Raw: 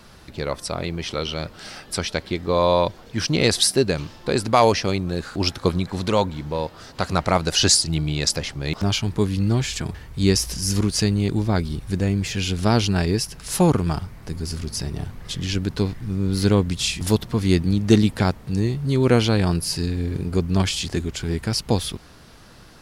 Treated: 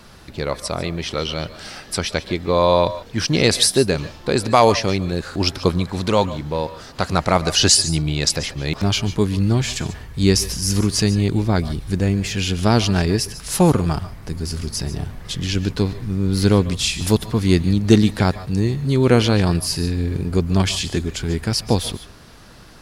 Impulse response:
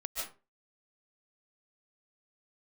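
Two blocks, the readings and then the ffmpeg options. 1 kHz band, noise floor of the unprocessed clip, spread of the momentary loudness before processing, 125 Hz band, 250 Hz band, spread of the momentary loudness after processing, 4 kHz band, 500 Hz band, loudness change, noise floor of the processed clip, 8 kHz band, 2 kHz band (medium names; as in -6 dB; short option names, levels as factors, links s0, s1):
+2.5 dB, -46 dBFS, 11 LU, +2.5 dB, +2.5 dB, 11 LU, +2.5 dB, +2.5 dB, +2.5 dB, -42 dBFS, +3.0 dB, +2.5 dB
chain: -filter_complex "[0:a]asplit=2[s0][s1];[1:a]atrim=start_sample=2205,atrim=end_sample=6174,asetrate=40131,aresample=44100[s2];[s1][s2]afir=irnorm=-1:irlink=0,volume=0.473[s3];[s0][s3]amix=inputs=2:normalize=0"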